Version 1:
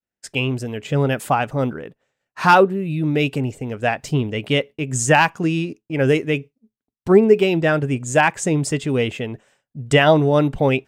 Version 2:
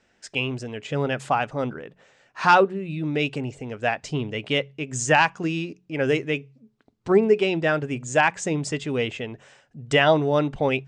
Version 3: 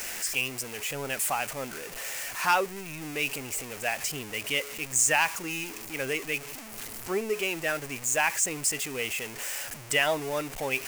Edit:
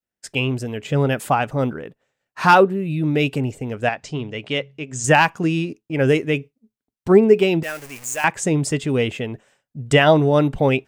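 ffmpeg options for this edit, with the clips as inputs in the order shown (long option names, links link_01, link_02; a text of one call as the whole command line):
ffmpeg -i take0.wav -i take1.wav -i take2.wav -filter_complex "[0:a]asplit=3[link_01][link_02][link_03];[link_01]atrim=end=3.892[link_04];[1:a]atrim=start=3.888:end=5.042[link_05];[link_02]atrim=start=5.038:end=7.632[link_06];[2:a]atrim=start=7.628:end=8.242[link_07];[link_03]atrim=start=8.238[link_08];[link_04][link_05]acrossfade=duration=0.004:curve1=hsin:curve2=hsin[link_09];[link_09][link_06]acrossfade=duration=0.004:curve1=hsin:curve2=hsin[link_10];[link_10][link_07]acrossfade=duration=0.004:curve1=hsin:curve2=hsin[link_11];[link_11][link_08]acrossfade=duration=0.004:curve1=hsin:curve2=hsin" out.wav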